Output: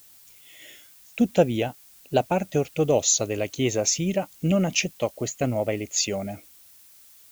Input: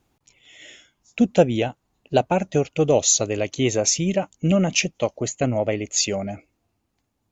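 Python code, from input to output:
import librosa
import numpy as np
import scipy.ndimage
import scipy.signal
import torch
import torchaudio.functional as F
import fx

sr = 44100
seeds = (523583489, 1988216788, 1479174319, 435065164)

y = fx.dmg_noise_colour(x, sr, seeds[0], colour='blue', level_db=-49.0)
y = F.gain(torch.from_numpy(y), -3.0).numpy()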